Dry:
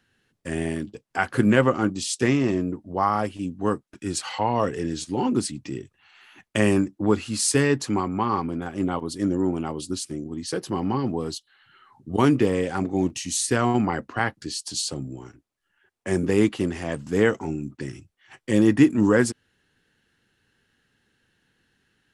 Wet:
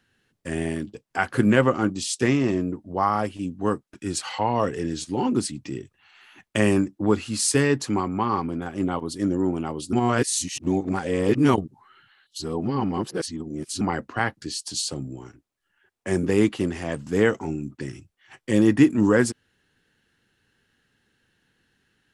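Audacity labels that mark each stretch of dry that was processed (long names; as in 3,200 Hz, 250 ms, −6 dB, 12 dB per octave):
9.930000	13.810000	reverse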